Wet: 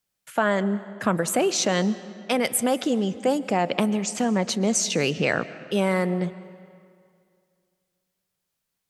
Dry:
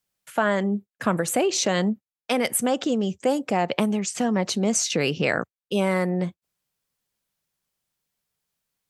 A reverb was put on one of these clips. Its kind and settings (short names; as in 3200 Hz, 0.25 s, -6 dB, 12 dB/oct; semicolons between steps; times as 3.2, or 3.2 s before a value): digital reverb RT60 2.3 s, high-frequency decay 0.75×, pre-delay 95 ms, DRR 15.5 dB